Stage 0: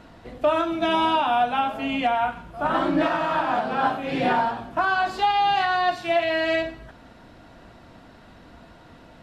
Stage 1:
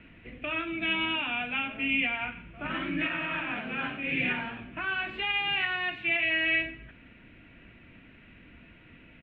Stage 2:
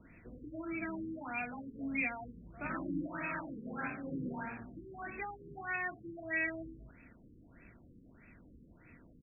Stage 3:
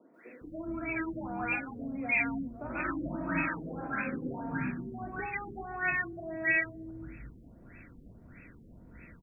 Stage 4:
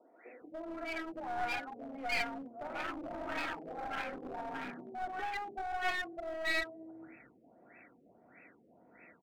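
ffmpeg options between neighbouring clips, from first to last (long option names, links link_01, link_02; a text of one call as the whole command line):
ffmpeg -i in.wav -filter_complex "[0:a]firequalizer=gain_entry='entry(280,0);entry(780,-14);entry(2400,13);entry(4900,-27)':delay=0.05:min_phase=1,acrossover=split=230|1200[link_01][link_02][link_03];[link_02]alimiter=level_in=3.5dB:limit=-24dB:level=0:latency=1:release=165,volume=-3.5dB[link_04];[link_01][link_04][link_03]amix=inputs=3:normalize=0,volume=-4.5dB" out.wav
ffmpeg -i in.wav -af "asoftclip=type=hard:threshold=-19dB,afftfilt=real='re*lt(b*sr/1024,480*pow(2700/480,0.5+0.5*sin(2*PI*1.6*pts/sr)))':imag='im*lt(b*sr/1024,480*pow(2700/480,0.5+0.5*sin(2*PI*1.6*pts/sr)))':win_size=1024:overlap=0.75,volume=-4.5dB" out.wav
ffmpeg -i in.wav -filter_complex "[0:a]acrossover=split=300|910[link_01][link_02][link_03];[link_03]adelay=140[link_04];[link_01]adelay=410[link_05];[link_05][link_02][link_04]amix=inputs=3:normalize=0,volume=7.5dB" out.wav
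ffmpeg -i in.wav -af "aeval=exprs='0.15*(cos(1*acos(clip(val(0)/0.15,-1,1)))-cos(1*PI/2))+0.0266*(cos(4*acos(clip(val(0)/0.15,-1,1)))-cos(4*PI/2))':channel_layout=same,highpass=420,equalizer=frequency=750:width_type=q:width=4:gain=8,equalizer=frequency=1100:width_type=q:width=4:gain=-4,equalizer=frequency=1600:width_type=q:width=4:gain=-5,lowpass=frequency=2400:width=0.5412,lowpass=frequency=2400:width=1.3066,aeval=exprs='clip(val(0),-1,0.00944)':channel_layout=same" out.wav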